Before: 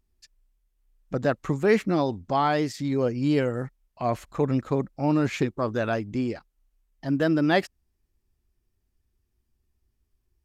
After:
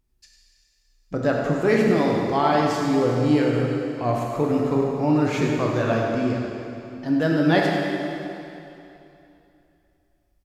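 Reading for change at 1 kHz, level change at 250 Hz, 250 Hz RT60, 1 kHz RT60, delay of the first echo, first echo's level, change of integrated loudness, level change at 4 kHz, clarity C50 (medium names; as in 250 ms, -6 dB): +4.0 dB, +4.5 dB, 2.8 s, 2.9 s, 98 ms, -9.0 dB, +4.0 dB, +4.0 dB, -0.5 dB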